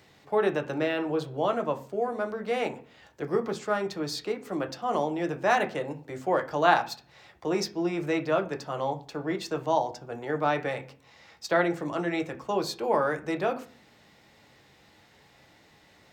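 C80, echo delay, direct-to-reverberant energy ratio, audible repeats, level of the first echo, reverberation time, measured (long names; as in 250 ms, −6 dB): 20.5 dB, no echo audible, 5.0 dB, no echo audible, no echo audible, 0.45 s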